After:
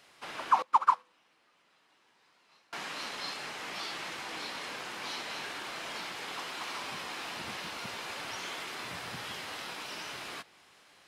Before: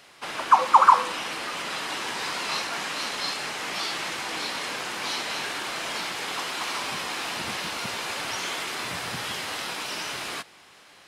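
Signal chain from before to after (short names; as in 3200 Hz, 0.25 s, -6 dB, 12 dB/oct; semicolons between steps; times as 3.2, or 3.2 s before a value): dynamic EQ 9100 Hz, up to -4 dB, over -49 dBFS, Q 0.72; 0.62–2.73 upward expander 2.5:1, over -29 dBFS; gain -8 dB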